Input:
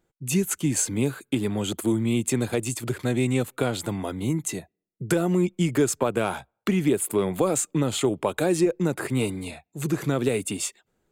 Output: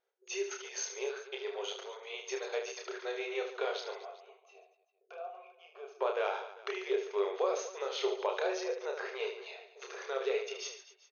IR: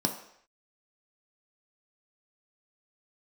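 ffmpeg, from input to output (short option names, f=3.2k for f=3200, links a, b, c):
-filter_complex "[0:a]asettb=1/sr,asplit=3[a][b][c];[a]atrim=end=3.984[d];[b]atrim=start=3.98:end=5.95,asetpts=PTS-STARTPTS,afade=t=in:d=0.004:c=qsin,afade=t=out:st=1.966:d=0.004:c=qsin,asplit=3[e][f][g];[e]bandpass=f=730:t=q:w=8,volume=0dB[h];[f]bandpass=f=1.09k:t=q:w=8,volume=-6dB[i];[g]bandpass=f=2.44k:t=q:w=8,volume=-9dB[j];[h][i][j]amix=inputs=3:normalize=0[k];[c]atrim=start=5.946[l];[d][k]acrossfade=d=0.004:c1=hsin:c2=qsin[m];[m][l]acrossfade=d=0.004:c1=qsin:c2=hsin,afftfilt=real='re*between(b*sr/4096,370,6600)':imag='im*between(b*sr/4096,370,6600)':win_size=4096:overlap=0.75,aecho=1:1:30|75|142.5|243.8|395.6:0.631|0.398|0.251|0.158|0.1,volume=-8.5dB"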